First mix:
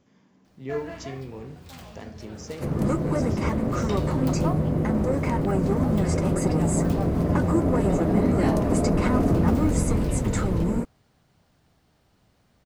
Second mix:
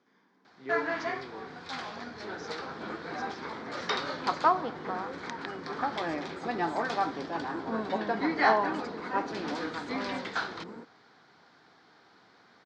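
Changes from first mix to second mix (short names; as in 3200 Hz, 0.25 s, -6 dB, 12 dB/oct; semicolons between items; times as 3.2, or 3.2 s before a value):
first sound +11.0 dB; second sound -10.5 dB; master: add speaker cabinet 400–4800 Hz, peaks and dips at 590 Hz -10 dB, 1500 Hz +4 dB, 2800 Hz -10 dB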